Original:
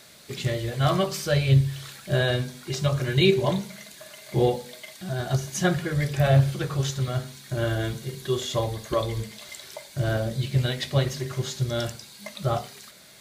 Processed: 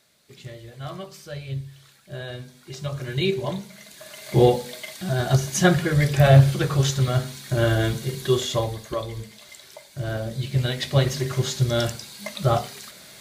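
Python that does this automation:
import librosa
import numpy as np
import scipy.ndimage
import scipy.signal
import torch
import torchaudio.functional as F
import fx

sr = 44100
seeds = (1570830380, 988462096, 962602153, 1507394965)

y = fx.gain(x, sr, db=fx.line((2.11, -12.5), (3.14, -4.0), (3.69, -4.0), (4.28, 5.5), (8.32, 5.5), (9.03, -4.0), (9.98, -4.0), (11.2, 5.0)))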